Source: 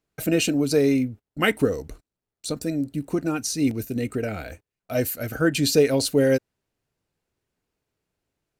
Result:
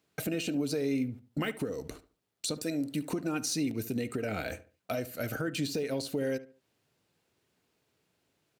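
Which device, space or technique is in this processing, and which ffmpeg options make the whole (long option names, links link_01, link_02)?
broadcast voice chain: -filter_complex "[0:a]asettb=1/sr,asplit=3[link_01][link_02][link_03];[link_01]atrim=end=2.624[link_04];[link_02]atrim=start=2.62:end=3.1,asetpts=PTS-STARTPTS,afade=type=in:duration=0.004:curve=qsin,afade=type=out:start_time=0.476:duration=0.004:curve=qsin,lowshelf=frequency=340:gain=-10.5[link_05];[link_03]atrim=start=3.096[link_06];[link_04][link_05]acrossfade=duration=0.004:curve1=hsin:curve2=qsin[link_07];[link_07][link_06]acrossfade=duration=0.004:curve1=qsin:curve2=hsin,highpass=110,deesser=0.55,acompressor=threshold=-33dB:ratio=3,equalizer=frequency=3500:width_type=o:width=1.1:gain=3.5,alimiter=level_in=4dB:limit=-24dB:level=0:latency=1:release=328,volume=-4dB,asplit=2[link_08][link_09];[link_09]adelay=72,lowpass=frequency=2000:poles=1,volume=-15dB,asplit=2[link_10][link_11];[link_11]adelay=72,lowpass=frequency=2000:poles=1,volume=0.32,asplit=2[link_12][link_13];[link_13]adelay=72,lowpass=frequency=2000:poles=1,volume=0.32[link_14];[link_08][link_10][link_12][link_14]amix=inputs=4:normalize=0,volume=5.5dB"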